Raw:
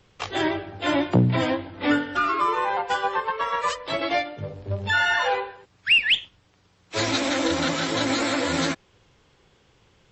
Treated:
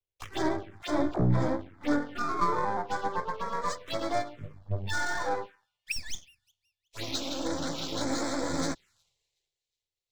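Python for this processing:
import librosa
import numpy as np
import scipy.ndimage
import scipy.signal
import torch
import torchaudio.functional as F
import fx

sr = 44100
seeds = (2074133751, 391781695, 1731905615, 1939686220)

p1 = np.where(x < 0.0, 10.0 ** (-12.0 / 20.0) * x, x)
p2 = p1 + fx.echo_wet_highpass(p1, sr, ms=366, feedback_pct=70, hz=2500.0, wet_db=-22.5, dry=0)
p3 = fx.rider(p2, sr, range_db=4, speed_s=2.0)
p4 = fx.leveller(p3, sr, passes=1)
p5 = 10.0 ** (-12.0 / 20.0) * (np.abs((p4 / 10.0 ** (-12.0 / 20.0) + 3.0) % 4.0 - 2.0) - 1.0)
p6 = fx.transient(p5, sr, attack_db=8, sustain_db=4, at=(2.19, 2.75))
p7 = fx.low_shelf(p6, sr, hz=470.0, db=-11.5, at=(5.46, 5.96))
p8 = fx.env_phaser(p7, sr, low_hz=210.0, high_hz=2800.0, full_db=-19.0)
p9 = fx.dispersion(p8, sr, late='lows', ms=56.0, hz=420.0, at=(0.82, 1.48))
p10 = fx.band_widen(p9, sr, depth_pct=70)
y = F.gain(torch.from_numpy(p10), -6.0).numpy()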